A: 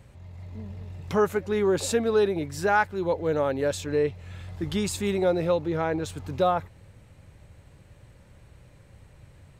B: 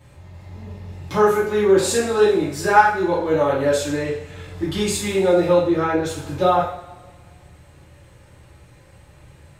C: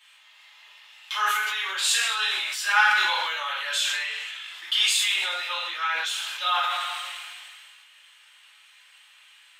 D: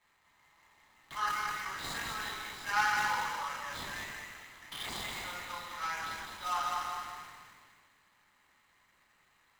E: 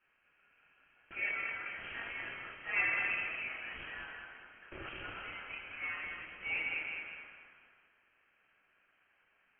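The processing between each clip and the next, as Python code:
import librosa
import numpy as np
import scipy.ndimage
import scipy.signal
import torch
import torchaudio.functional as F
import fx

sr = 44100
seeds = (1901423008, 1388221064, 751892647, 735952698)

y1 = fx.low_shelf(x, sr, hz=170.0, db=-6.5)
y1 = fx.rev_double_slope(y1, sr, seeds[0], early_s=0.51, late_s=1.7, knee_db=-18, drr_db=-8.5)
y1 = y1 * librosa.db_to_amplitude(-1.5)
y2 = scipy.signal.sosfilt(scipy.signal.butter(4, 1200.0, 'highpass', fs=sr, output='sos'), y1)
y2 = fx.peak_eq(y2, sr, hz=3100.0, db=14.0, octaves=0.65)
y2 = fx.sustainer(y2, sr, db_per_s=24.0)
y2 = y2 * librosa.db_to_amplitude(-1.5)
y3 = scipy.signal.medfilt(y2, 15)
y3 = y3 + 0.32 * np.pad(y3, (int(1.0 * sr / 1000.0), 0))[:len(y3)]
y3 = fx.echo_feedback(y3, sr, ms=206, feedback_pct=32, wet_db=-4.5)
y3 = y3 * librosa.db_to_amplitude(-7.5)
y4 = scipy.signal.sosfilt(scipy.signal.butter(4, 330.0, 'highpass', fs=sr, output='sos'), y3)
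y4 = fx.freq_invert(y4, sr, carrier_hz=3500)
y4 = y4 * librosa.db_to_amplitude(-3.0)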